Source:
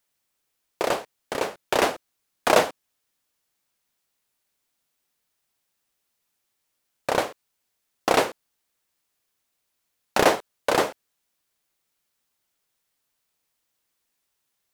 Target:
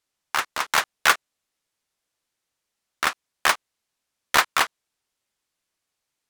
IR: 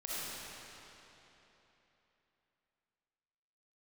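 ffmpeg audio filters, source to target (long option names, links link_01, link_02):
-filter_complex "[0:a]acrossover=split=5200[link_01][link_02];[link_02]acrusher=bits=5:mix=0:aa=0.000001[link_03];[link_01][link_03]amix=inputs=2:normalize=0,asetrate=103194,aresample=44100,volume=2dB"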